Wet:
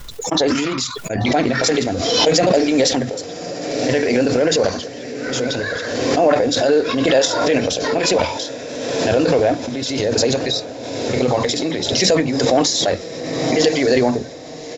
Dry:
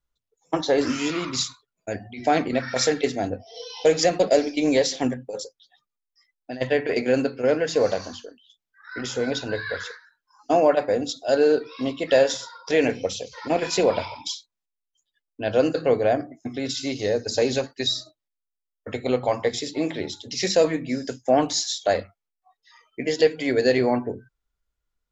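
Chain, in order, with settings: tempo 1.7×; transient shaper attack -3 dB, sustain +7 dB; on a send: echo that smears into a reverb 1134 ms, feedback 58%, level -13 dB; on the sum: swell ahead of each attack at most 33 dB/s; trim +4.5 dB

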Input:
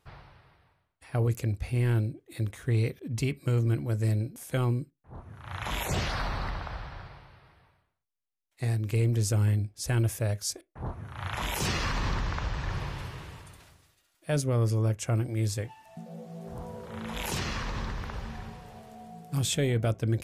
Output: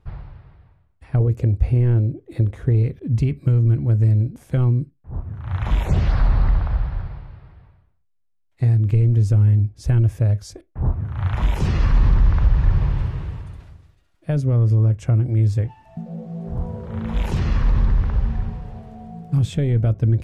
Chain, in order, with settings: 1.20–2.83 s: peaking EQ 490 Hz +7 dB 1.5 oct; compression 5:1, threshold -28 dBFS, peak gain reduction 7.5 dB; RIAA curve playback; trim +3 dB

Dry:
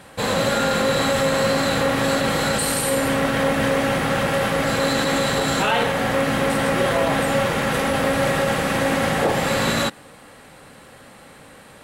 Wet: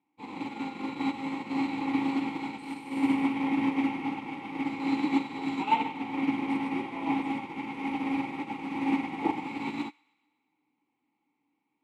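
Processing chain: vowel filter u; feedback echo behind a high-pass 124 ms, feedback 59%, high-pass 1.4 kHz, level -5 dB; upward expansion 2.5:1, over -47 dBFS; trim +9 dB

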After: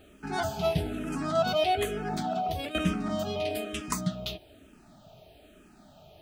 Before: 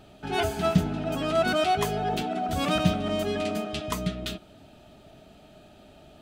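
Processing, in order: 0.59–1.18 s: CVSD coder 64 kbps; 2.24–2.75 s: compressor with a negative ratio -29 dBFS, ratio -0.5; 3.50–4.01 s: treble shelf 5 kHz +8.5 dB; bit crusher 11-bit; barber-pole phaser -1.1 Hz

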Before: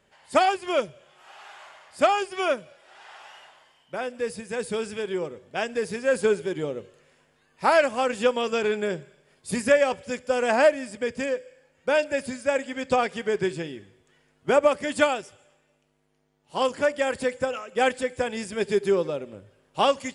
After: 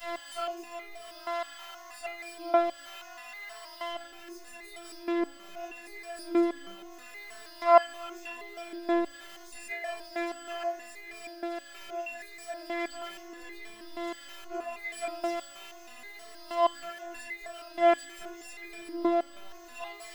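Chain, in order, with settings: jump at every zero crossing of -25.5 dBFS; three-band isolator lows -13 dB, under 460 Hz, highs -13 dB, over 3.8 kHz; robot voice 341 Hz; pre-emphasis filter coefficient 0.8; reverberation RT60 0.45 s, pre-delay 3 ms, DRR -10 dB; resonator arpeggio 6.3 Hz 170–410 Hz; trim +4.5 dB

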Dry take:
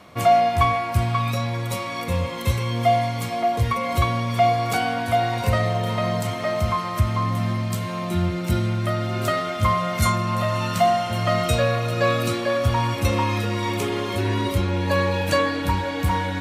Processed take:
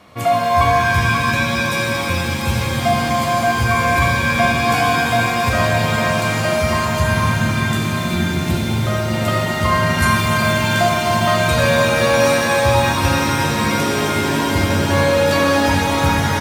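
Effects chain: on a send: delay 72 ms -10.5 dB; on the sum: pitch-shifted reverb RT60 3.8 s, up +7 st, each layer -2 dB, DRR -1 dB

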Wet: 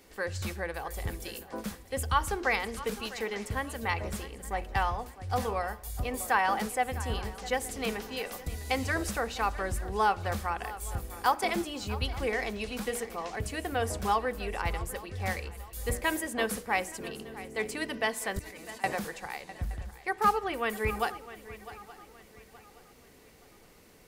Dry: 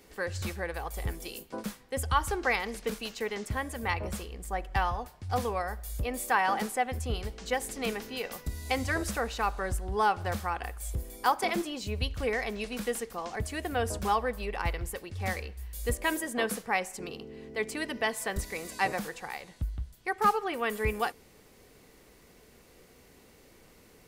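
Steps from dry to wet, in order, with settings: hum notches 60/120/180/240/300/360/420/480 Hz; 18.39–18.84 s: level held to a coarse grid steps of 24 dB; on a send: shuffle delay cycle 871 ms, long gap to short 3:1, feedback 33%, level -16 dB

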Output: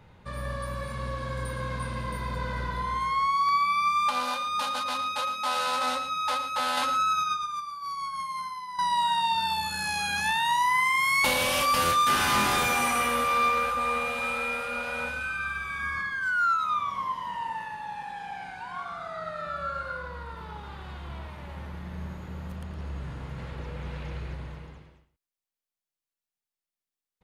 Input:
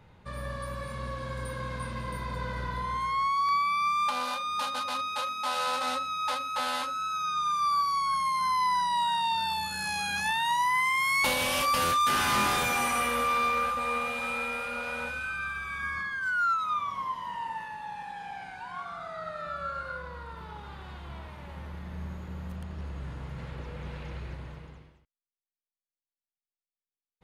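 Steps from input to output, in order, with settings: 6.77–8.79 s: compressor with a negative ratio -32 dBFS, ratio -0.5; on a send: delay 112 ms -12.5 dB; on the sum: trim +2 dB

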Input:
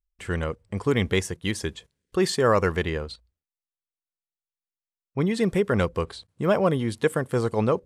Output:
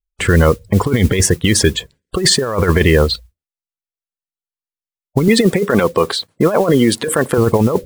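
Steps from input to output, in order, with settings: 5.28–7.38 s: Bessel high-pass 260 Hz, order 2; gate with hold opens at -55 dBFS; spectral gate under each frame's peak -25 dB strong; compressor with a negative ratio -26 dBFS, ratio -0.5; modulation noise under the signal 24 dB; loudness maximiser +18.5 dB; trim -1 dB

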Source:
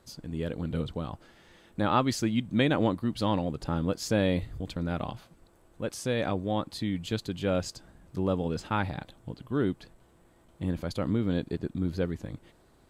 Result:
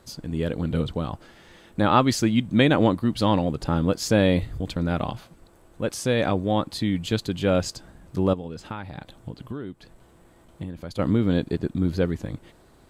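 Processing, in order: 8.33–10.99 s: compression 12:1, threshold -37 dBFS, peak gain reduction 15 dB; trim +6.5 dB

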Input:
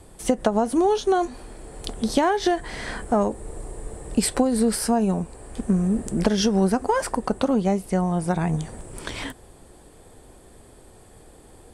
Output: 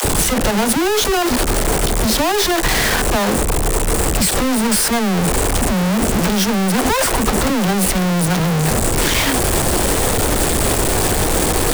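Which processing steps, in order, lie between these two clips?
one-bit comparator; phase dispersion lows, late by 47 ms, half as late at 320 Hz; trim +8.5 dB

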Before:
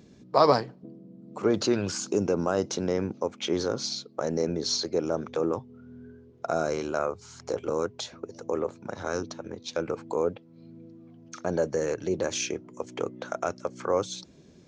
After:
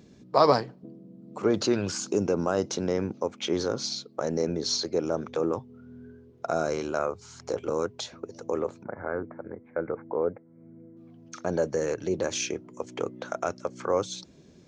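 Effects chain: 8.83–10.97 s: rippled Chebyshev low-pass 2.2 kHz, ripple 3 dB

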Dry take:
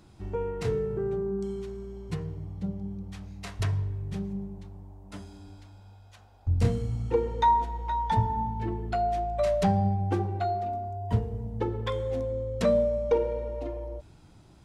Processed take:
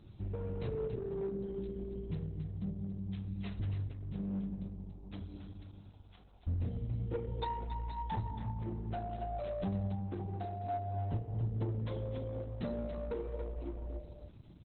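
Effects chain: 2.48–3.24 s: hum notches 60/120/180/240/300/360/420/480/540 Hz; peaking EQ 1.2 kHz -11.5 dB 2.8 oct; 10.67–11.45 s: comb 7 ms, depth 75%; compression 2.5:1, threshold -39 dBFS, peak gain reduction 13.5 dB; flange 0.26 Hz, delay 8.6 ms, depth 6.5 ms, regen +67%; 7.46–7.87 s: Savitzky-Golay filter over 25 samples; one-sided clip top -41 dBFS, bottom -34.5 dBFS; delay 280 ms -8.5 dB; trim +7.5 dB; Opus 8 kbps 48 kHz

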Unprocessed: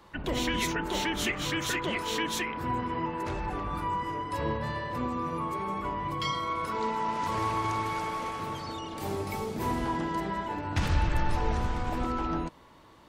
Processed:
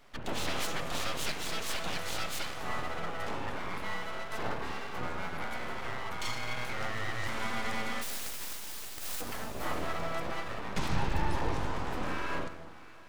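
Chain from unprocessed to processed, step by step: 8.01–9.20 s: spectral contrast reduction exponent 0.12; Schroeder reverb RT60 2.7 s, combs from 33 ms, DRR 10.5 dB; full-wave rectifier; trim -2 dB

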